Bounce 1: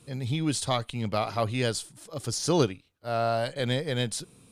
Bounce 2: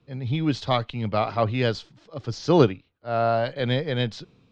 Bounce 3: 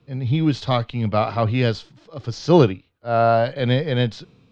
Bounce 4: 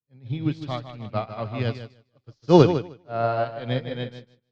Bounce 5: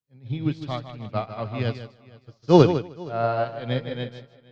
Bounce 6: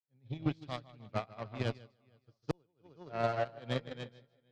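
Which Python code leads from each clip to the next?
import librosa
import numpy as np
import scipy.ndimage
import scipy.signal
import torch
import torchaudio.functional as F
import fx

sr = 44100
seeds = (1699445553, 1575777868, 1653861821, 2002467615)

y1 = scipy.signal.sosfilt(scipy.signal.bessel(8, 3200.0, 'lowpass', norm='mag', fs=sr, output='sos'), x)
y1 = fx.band_widen(y1, sr, depth_pct=40)
y1 = F.gain(torch.from_numpy(y1), 4.5).numpy()
y2 = fx.hpss(y1, sr, part='harmonic', gain_db=6)
y3 = fx.echo_feedback(y2, sr, ms=154, feedback_pct=43, wet_db=-4.5)
y3 = fx.upward_expand(y3, sr, threshold_db=-37.0, expansion=2.5)
y3 = F.gain(torch.from_numpy(y3), 1.0).numpy()
y4 = fx.echo_feedback(y3, sr, ms=467, feedback_pct=20, wet_db=-23)
y5 = fx.gate_flip(y4, sr, shuts_db=-12.0, range_db=-39)
y5 = fx.cheby_harmonics(y5, sr, harmonics=(7,), levels_db=(-20,), full_scale_db=-11.0)
y5 = F.gain(torch.from_numpy(y5), -7.5).numpy()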